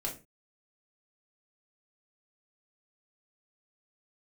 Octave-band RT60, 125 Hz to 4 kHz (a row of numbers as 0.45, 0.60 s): 0.40, 0.35, 0.30, 0.25, 0.30, 0.25 s